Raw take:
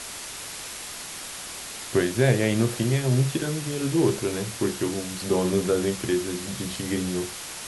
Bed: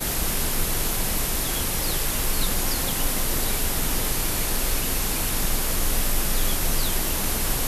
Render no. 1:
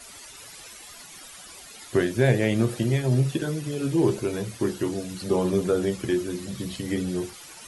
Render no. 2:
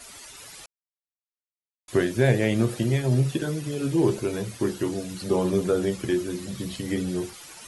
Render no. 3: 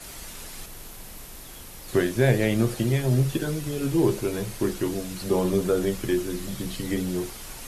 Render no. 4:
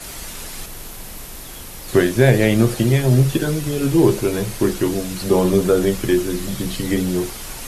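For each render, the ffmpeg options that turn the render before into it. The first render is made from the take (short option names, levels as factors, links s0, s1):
-af "afftdn=nr=13:nf=-37"
-filter_complex "[0:a]asplit=3[s0][s1][s2];[s0]atrim=end=0.66,asetpts=PTS-STARTPTS,afade=t=out:st=0.656:d=0.004:c=hsin[s3];[s1]atrim=start=0.66:end=1.88,asetpts=PTS-STARTPTS,volume=0[s4];[s2]atrim=start=1.88,asetpts=PTS-STARTPTS,afade=t=in:d=0.004:c=hsin[s5];[s3][s4][s5]concat=n=3:v=0:a=1"
-filter_complex "[1:a]volume=0.141[s0];[0:a][s0]amix=inputs=2:normalize=0"
-af "volume=2.37,alimiter=limit=0.891:level=0:latency=1"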